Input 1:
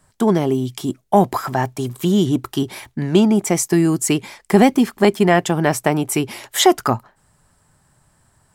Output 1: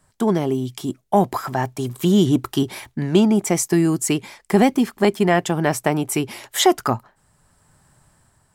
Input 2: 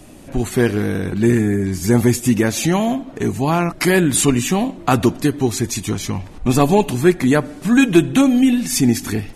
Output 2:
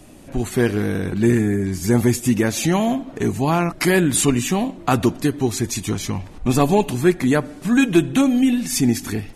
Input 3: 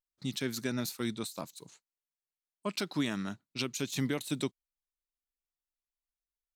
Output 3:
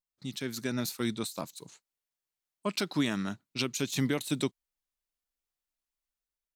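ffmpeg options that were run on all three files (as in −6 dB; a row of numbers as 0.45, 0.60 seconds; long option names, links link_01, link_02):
-af "dynaudnorm=framelen=260:gausssize=5:maxgain=6dB,volume=-3dB"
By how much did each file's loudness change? −2.0, −2.5, +2.5 LU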